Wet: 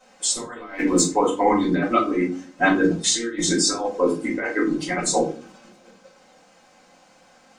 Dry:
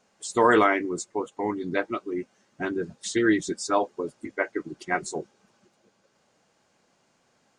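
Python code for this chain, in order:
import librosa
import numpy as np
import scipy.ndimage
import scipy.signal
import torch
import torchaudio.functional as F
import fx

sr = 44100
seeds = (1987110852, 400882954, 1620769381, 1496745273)

p1 = fx.low_shelf(x, sr, hz=180.0, db=-8.5)
p2 = p1 + 0.46 * np.pad(p1, (int(3.9 * sr / 1000.0), 0))[:len(p1)]
p3 = fx.level_steps(p2, sr, step_db=13)
p4 = p2 + (p3 * librosa.db_to_amplitude(1.5))
p5 = fx.leveller(p4, sr, passes=1, at=(0.58, 1.01))
p6 = fx.over_compress(p5, sr, threshold_db=-25.0, ratio=-0.5)
p7 = fx.room_shoebox(p6, sr, seeds[0], volume_m3=190.0, walls='furnished', distance_m=5.1)
y = p7 * librosa.db_to_amplitude(-4.5)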